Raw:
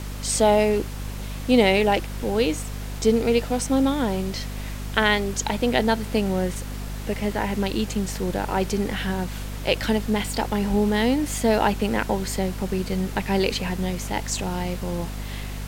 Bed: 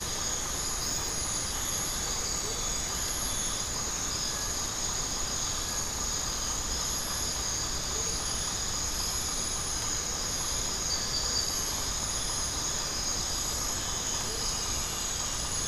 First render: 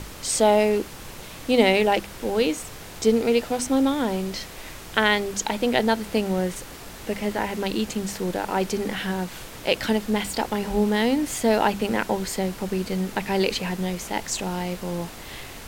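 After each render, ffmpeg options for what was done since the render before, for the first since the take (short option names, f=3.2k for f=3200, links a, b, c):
-af "bandreject=f=50:t=h:w=6,bandreject=f=100:t=h:w=6,bandreject=f=150:t=h:w=6,bandreject=f=200:t=h:w=6,bandreject=f=250:t=h:w=6"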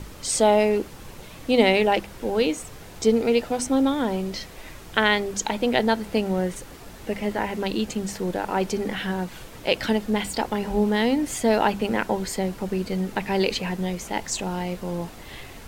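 -af "afftdn=nr=6:nf=-40"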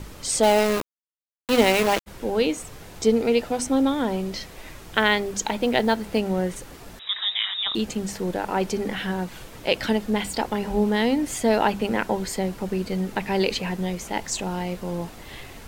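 -filter_complex "[0:a]asplit=3[a][b][c];[a]afade=t=out:st=0.42:d=0.02[d];[b]aeval=exprs='val(0)*gte(abs(val(0)),0.0944)':c=same,afade=t=in:st=0.42:d=0.02,afade=t=out:st=2.06:d=0.02[e];[c]afade=t=in:st=2.06:d=0.02[f];[d][e][f]amix=inputs=3:normalize=0,asplit=3[g][h][i];[g]afade=t=out:st=4.9:d=0.02[j];[h]acrusher=bits=8:mode=log:mix=0:aa=0.000001,afade=t=in:st=4.9:d=0.02,afade=t=out:st=6.19:d=0.02[k];[i]afade=t=in:st=6.19:d=0.02[l];[j][k][l]amix=inputs=3:normalize=0,asettb=1/sr,asplit=3[m][n][o];[m]atrim=end=6.994[p];[n]atrim=start=6.99:end=7.75,asetpts=PTS-STARTPTS,afade=t=in:d=0.004:c=qsin,afade=t=out:st=0.756:d=0.004:c=qsin,lowpass=f=3.3k:t=q:w=0.5098,lowpass=f=3.3k:t=q:w=0.6013,lowpass=f=3.3k:t=q:w=0.9,lowpass=f=3.3k:t=q:w=2.563,afreqshift=-3900[q];[o]atrim=start=7.746[r];[p][q]acrossfade=d=0.004:c1=hsin:c2=qsin[s];[s][r]acrossfade=d=0.004:c1=qsin:c2=hsin"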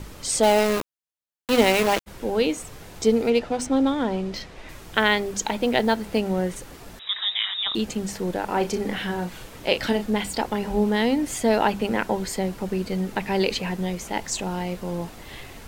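-filter_complex "[0:a]asettb=1/sr,asplit=3[a][b][c];[a]atrim=end=3.304[d];[b]atrim=start=3.3:end=4.69,asetpts=PTS-STARTPTS,afade=t=in:d=0.004:c=qsin,afade=t=out:st=1.386:d=0.004:c=qsin,adynamicsmooth=sensitivity=5:basefreq=5.7k[e];[c]atrim=start=4.686[f];[d][e]acrossfade=d=0.004:c1=hsin:c2=qsin[g];[g][f]acrossfade=d=0.004:c1=qsin:c2=hsin,asettb=1/sr,asplit=3[h][i][j];[h]atrim=end=8.464[k];[i]atrim=start=8.46:end=10.06,asetpts=PTS-STARTPTS,afade=t=in:d=0.004:c=qsin,afade=t=out:st=1.596:d=0.004:c=qsin,asplit=2[l][m];[m]adelay=34,volume=-9dB[n];[l][n]amix=inputs=2:normalize=0,atrim=end_sample=70560[o];[j]atrim=start=10.056[p];[k][o]acrossfade=d=0.004:c1=hsin:c2=qsin[q];[q][p]acrossfade=d=0.004:c1=qsin:c2=hsin"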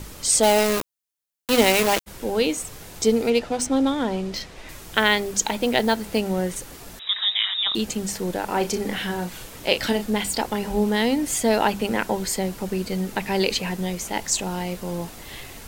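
-af "highshelf=f=4.6k:g=8.5"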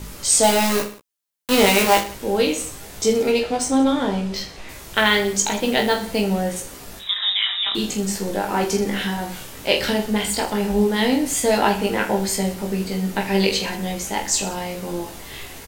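-filter_complex "[0:a]asplit=2[a][b];[b]adelay=15,volume=-8.5dB[c];[a][c]amix=inputs=2:normalize=0,aecho=1:1:20|46|79.8|123.7|180.9:0.631|0.398|0.251|0.158|0.1"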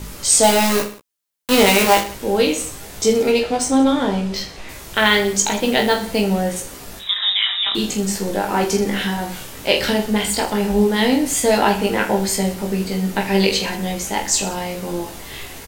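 -af "volume=2.5dB,alimiter=limit=-2dB:level=0:latency=1"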